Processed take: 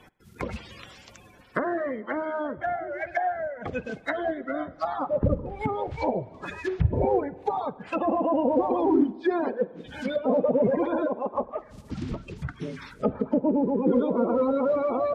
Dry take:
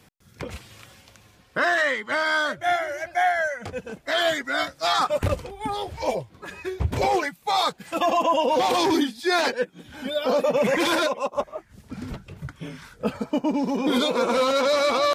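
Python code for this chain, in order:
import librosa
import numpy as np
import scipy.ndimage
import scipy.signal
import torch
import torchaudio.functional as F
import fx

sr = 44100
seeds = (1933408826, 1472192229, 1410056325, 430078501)

y = fx.spec_quant(x, sr, step_db=30)
y = fx.env_lowpass_down(y, sr, base_hz=570.0, full_db=-23.5)
y = fx.rev_spring(y, sr, rt60_s=1.5, pass_ms=(46,), chirp_ms=25, drr_db=18.5)
y = y * 10.0 ** (2.5 / 20.0)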